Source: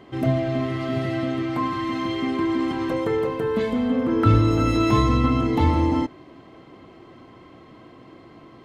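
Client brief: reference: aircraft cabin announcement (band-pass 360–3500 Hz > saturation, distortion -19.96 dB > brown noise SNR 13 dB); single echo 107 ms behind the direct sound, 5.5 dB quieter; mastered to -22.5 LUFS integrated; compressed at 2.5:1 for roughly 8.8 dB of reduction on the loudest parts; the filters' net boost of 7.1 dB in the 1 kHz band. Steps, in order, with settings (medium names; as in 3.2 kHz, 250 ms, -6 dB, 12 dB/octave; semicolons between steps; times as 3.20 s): peaking EQ 1 kHz +8.5 dB; compression 2.5:1, threshold -24 dBFS; band-pass 360–3500 Hz; delay 107 ms -5.5 dB; saturation -19.5 dBFS; brown noise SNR 13 dB; trim +6 dB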